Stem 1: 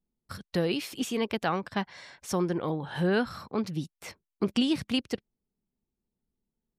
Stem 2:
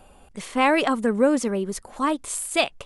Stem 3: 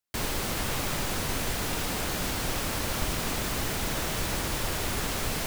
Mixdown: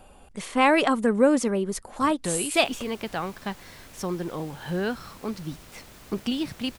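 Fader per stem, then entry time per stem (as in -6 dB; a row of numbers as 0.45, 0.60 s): -2.0, 0.0, -18.0 dB; 1.70, 0.00, 2.50 s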